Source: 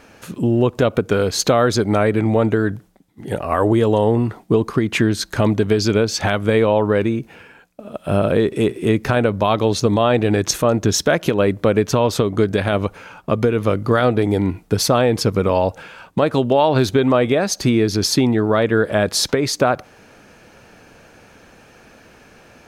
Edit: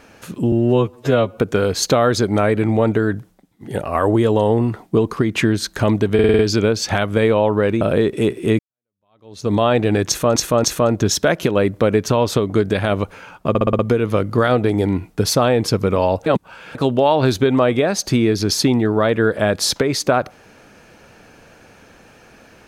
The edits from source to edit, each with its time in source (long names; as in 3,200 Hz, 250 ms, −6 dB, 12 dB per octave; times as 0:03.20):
0:00.52–0:00.95: time-stretch 2×
0:05.71: stutter 0.05 s, 6 plays
0:07.13–0:08.20: remove
0:08.98–0:09.90: fade in exponential
0:10.47–0:10.75: repeat, 3 plays
0:13.32: stutter 0.06 s, 6 plays
0:15.79–0:16.28: reverse